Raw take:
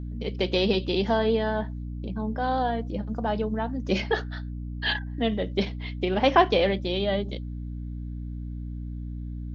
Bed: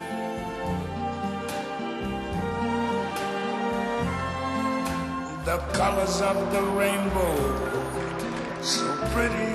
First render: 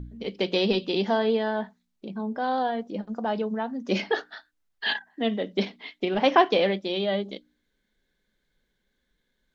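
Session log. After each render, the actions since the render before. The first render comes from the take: de-hum 60 Hz, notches 5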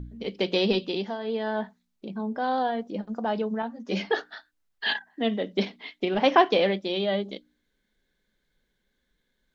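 0.77–1.59 dip -11.5 dB, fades 0.41 s; 3.62–4.1 ensemble effect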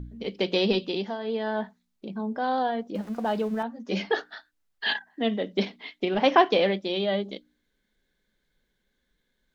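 2.95–3.63 zero-crossing step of -42 dBFS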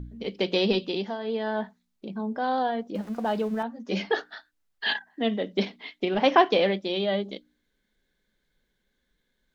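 nothing audible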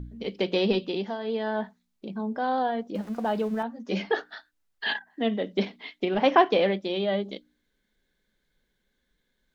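dynamic EQ 5200 Hz, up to -5 dB, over -41 dBFS, Q 0.76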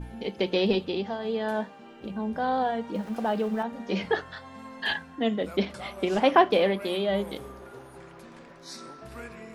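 add bed -17 dB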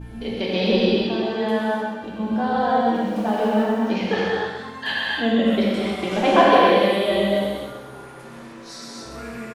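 feedback echo 0.129 s, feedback 44%, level -8 dB; non-linear reverb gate 0.33 s flat, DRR -5.5 dB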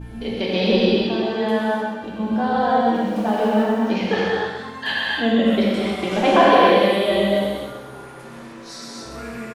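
gain +1.5 dB; limiter -3 dBFS, peak gain reduction 2.5 dB

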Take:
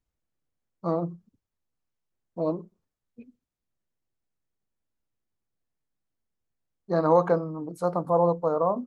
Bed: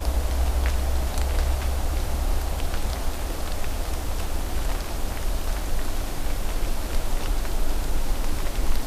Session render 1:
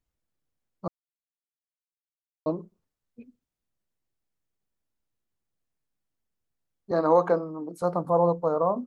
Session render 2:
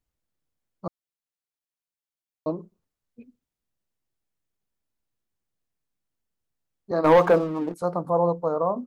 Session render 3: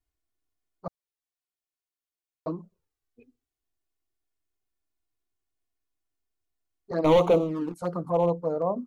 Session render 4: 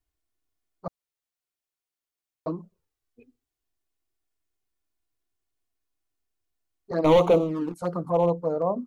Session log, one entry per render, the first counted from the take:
0.88–2.46 mute; 6.91–7.82 HPF 190 Hz 24 dB/oct
7.04–7.74 sample leveller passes 2
hard clip -13.5 dBFS, distortion -17 dB; envelope flanger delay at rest 2.8 ms, full sweep at -19 dBFS
gain +1.5 dB

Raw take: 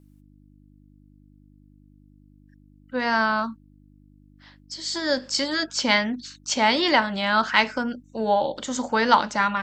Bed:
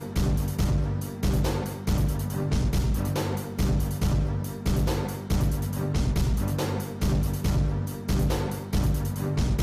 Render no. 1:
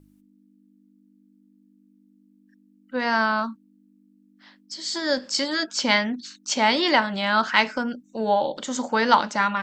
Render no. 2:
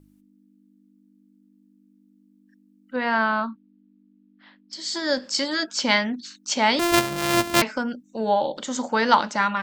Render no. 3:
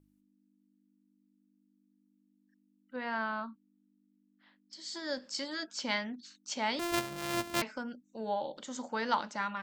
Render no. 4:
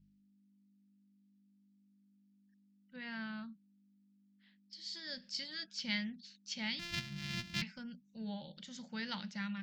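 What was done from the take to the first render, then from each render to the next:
de-hum 50 Hz, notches 3
2.96–4.73 LPF 3700 Hz 24 dB/oct; 6.79–7.62 sample sorter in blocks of 128 samples
gain -13 dB
EQ curve 130 Hz 0 dB, 180 Hz +12 dB, 270 Hz -14 dB, 510 Hz -16 dB, 1100 Hz -20 dB, 1800 Hz -5 dB, 2700 Hz -2 dB, 5000 Hz -1 dB, 9000 Hz -19 dB; 6.68–7.77 spectral gain 340–700 Hz -8 dB

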